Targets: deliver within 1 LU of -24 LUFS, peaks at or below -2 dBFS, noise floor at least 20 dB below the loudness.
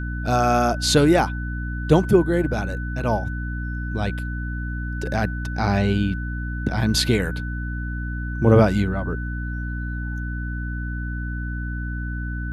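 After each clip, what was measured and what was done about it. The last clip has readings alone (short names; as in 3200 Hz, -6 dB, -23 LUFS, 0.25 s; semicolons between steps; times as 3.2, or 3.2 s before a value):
hum 60 Hz; harmonics up to 300 Hz; hum level -25 dBFS; steady tone 1500 Hz; tone level -34 dBFS; loudness -23.0 LUFS; peak -3.0 dBFS; loudness target -24.0 LUFS
-> notches 60/120/180/240/300 Hz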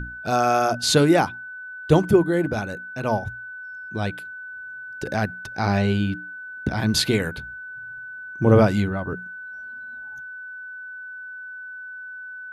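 hum none; steady tone 1500 Hz; tone level -34 dBFS
-> notch 1500 Hz, Q 30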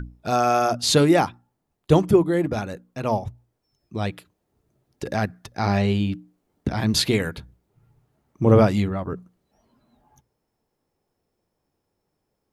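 steady tone none; loudness -22.0 LUFS; peak -4.0 dBFS; loudness target -24.0 LUFS
-> gain -2 dB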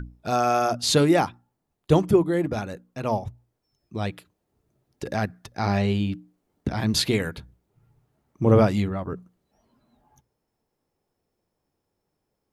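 loudness -24.0 LUFS; peak -6.0 dBFS; noise floor -79 dBFS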